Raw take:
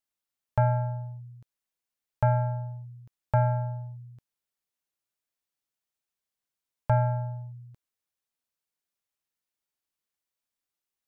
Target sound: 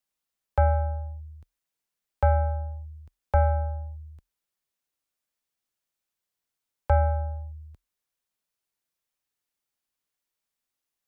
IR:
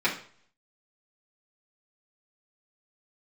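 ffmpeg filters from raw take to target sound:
-af "afreqshift=-44,volume=1.33"

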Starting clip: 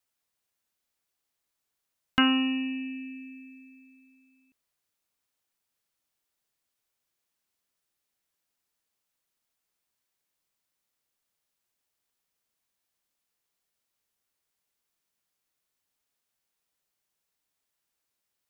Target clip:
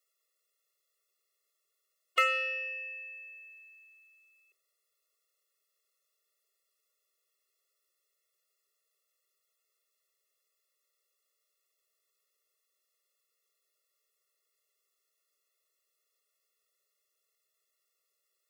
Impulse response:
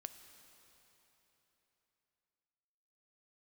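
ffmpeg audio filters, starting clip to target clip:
-filter_complex "[0:a]bandreject=f=690:w=12,aeval=exprs='0.355*(cos(1*acos(clip(val(0)/0.355,-1,1)))-cos(1*PI/2))+0.0126*(cos(8*acos(clip(val(0)/0.355,-1,1)))-cos(8*PI/2))':c=same,asplit=2[s0][s1];[s1]equalizer=f=100:t=o:w=0.33:g=-4,equalizer=f=160:t=o:w=0.33:g=-7,equalizer=f=1600:t=o:w=0.33:g=-8[s2];[1:a]atrim=start_sample=2205,afade=t=out:st=0.17:d=0.01,atrim=end_sample=7938,asetrate=38808,aresample=44100[s3];[s2][s3]afir=irnorm=-1:irlink=0,volume=0.562[s4];[s0][s4]amix=inputs=2:normalize=0,afftfilt=real='re*eq(mod(floor(b*sr/1024/360),2),1)':imag='im*eq(mod(floor(b*sr/1024/360),2),1)':win_size=1024:overlap=0.75,volume=1.33"

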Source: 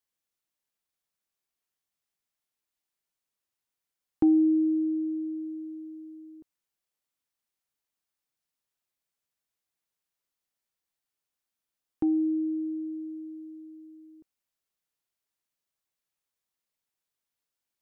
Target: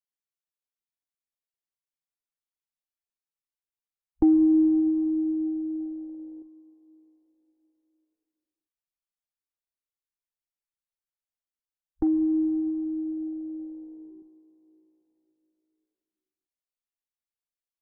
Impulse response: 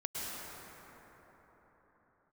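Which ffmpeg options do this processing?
-filter_complex "[0:a]afwtdn=0.00631,asubboost=boost=4:cutoff=68,asplit=2[s0][s1];[1:a]atrim=start_sample=2205[s2];[s1][s2]afir=irnorm=-1:irlink=0,volume=0.251[s3];[s0][s3]amix=inputs=2:normalize=0,volume=1.26"

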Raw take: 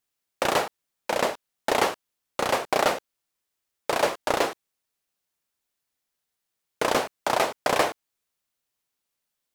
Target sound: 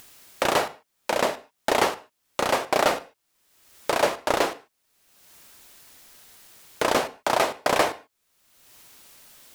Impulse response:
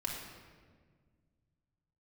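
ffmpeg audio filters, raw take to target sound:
-filter_complex "[0:a]asplit=2[s0][s1];[1:a]atrim=start_sample=2205,afade=t=out:st=0.2:d=0.01,atrim=end_sample=9261[s2];[s1][s2]afir=irnorm=-1:irlink=0,volume=0.2[s3];[s0][s3]amix=inputs=2:normalize=0,acompressor=mode=upward:threshold=0.0447:ratio=2.5"

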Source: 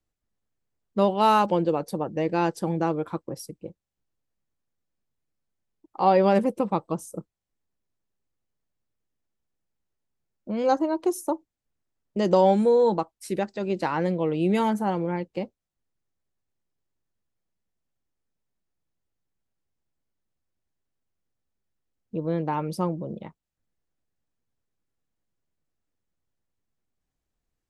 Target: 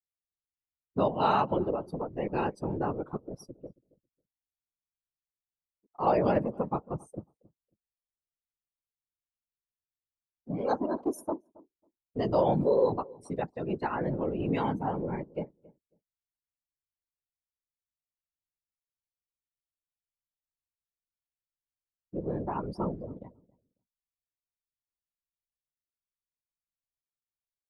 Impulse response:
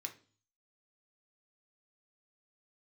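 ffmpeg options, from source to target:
-filter_complex "[0:a]afftdn=nr=22:nf=-37,afftfilt=real='hypot(re,im)*cos(2*PI*random(0))':imag='hypot(re,im)*sin(2*PI*random(1))':win_size=512:overlap=0.75,asplit=2[s0][s1];[s1]adelay=273,lowpass=f=870:p=1,volume=0.0841,asplit=2[s2][s3];[s3]adelay=273,lowpass=f=870:p=1,volume=0.17[s4];[s2][s4]amix=inputs=2:normalize=0[s5];[s0][s5]amix=inputs=2:normalize=0"

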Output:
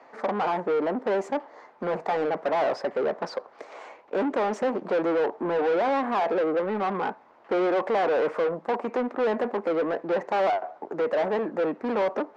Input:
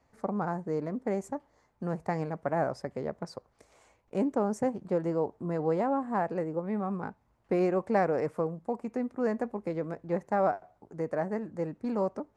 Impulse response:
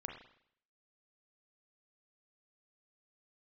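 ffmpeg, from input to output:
-filter_complex "[0:a]asplit=2[s0][s1];[s1]highpass=f=720:p=1,volume=44.7,asoftclip=type=tanh:threshold=0.211[s2];[s0][s2]amix=inputs=2:normalize=0,lowpass=f=1100:p=1,volume=0.501,acrossover=split=240 6100:gain=0.0794 1 0.126[s3][s4][s5];[s3][s4][s5]amix=inputs=3:normalize=0,volume=0.841"

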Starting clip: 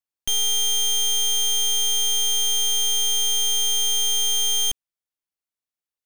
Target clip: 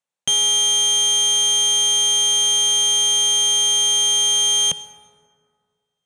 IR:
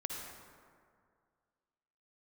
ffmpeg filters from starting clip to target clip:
-filter_complex "[0:a]highpass=140,equalizer=f=160:t=q:w=4:g=8,equalizer=f=310:t=q:w=4:g=-9,equalizer=f=540:t=q:w=4:g=6,equalizer=f=820:t=q:w=4:g=4,equalizer=f=4900:t=q:w=4:g=-7,lowpass=f=9100:w=0.5412,lowpass=f=9100:w=1.3066,asplit=2[s0][s1];[1:a]atrim=start_sample=2205[s2];[s1][s2]afir=irnorm=-1:irlink=0,volume=0.282[s3];[s0][s3]amix=inputs=2:normalize=0,acontrast=29"

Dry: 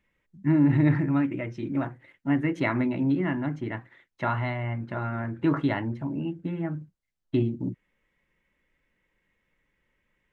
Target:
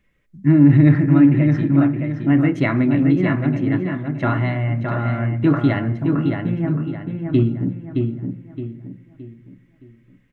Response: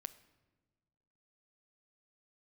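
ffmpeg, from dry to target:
-filter_complex "[0:a]bandreject=f=910:w=5.8,asplit=2[s0][s1];[s1]adelay=618,lowpass=f=3700:p=1,volume=0.596,asplit=2[s2][s3];[s3]adelay=618,lowpass=f=3700:p=1,volume=0.38,asplit=2[s4][s5];[s5]adelay=618,lowpass=f=3700:p=1,volume=0.38,asplit=2[s6][s7];[s7]adelay=618,lowpass=f=3700:p=1,volume=0.38,asplit=2[s8][s9];[s9]adelay=618,lowpass=f=3700:p=1,volume=0.38[s10];[s0][s2][s4][s6][s8][s10]amix=inputs=6:normalize=0,asplit=2[s11][s12];[1:a]atrim=start_sample=2205,lowshelf=f=300:g=7.5[s13];[s12][s13]afir=irnorm=-1:irlink=0,volume=3.16[s14];[s11][s14]amix=inputs=2:normalize=0,volume=0.596"

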